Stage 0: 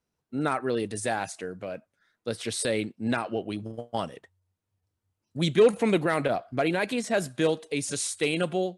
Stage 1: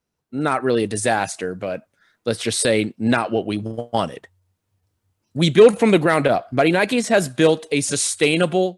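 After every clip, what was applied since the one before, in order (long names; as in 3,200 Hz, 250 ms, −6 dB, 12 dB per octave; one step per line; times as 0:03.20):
automatic gain control gain up to 7 dB
level +2.5 dB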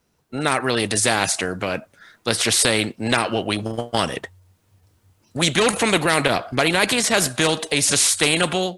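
every bin compressed towards the loudest bin 2 to 1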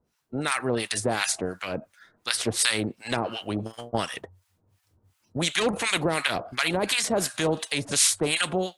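two-band tremolo in antiphase 2.8 Hz, depth 100%, crossover 1,000 Hz
level −2 dB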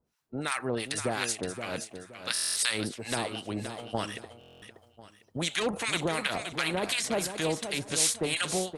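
repeating echo 522 ms, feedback 29%, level −9 dB
buffer that repeats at 0:02.33/0:04.39, samples 1,024, times 9
level −5 dB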